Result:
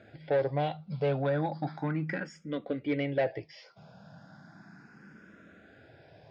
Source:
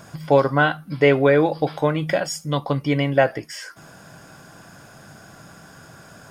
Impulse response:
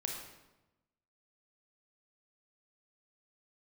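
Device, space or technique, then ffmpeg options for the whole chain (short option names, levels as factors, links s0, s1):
barber-pole phaser into a guitar amplifier: -filter_complex "[0:a]asplit=2[s0][s1];[s1]afreqshift=0.35[s2];[s0][s2]amix=inputs=2:normalize=1,asoftclip=type=tanh:threshold=0.168,highpass=78,equalizer=f=200:t=q:w=4:g=5,equalizer=f=1100:t=q:w=4:g=-10,equalizer=f=3000:t=q:w=4:g=-7,lowpass=f=4100:w=0.5412,lowpass=f=4100:w=1.3066,volume=0.531"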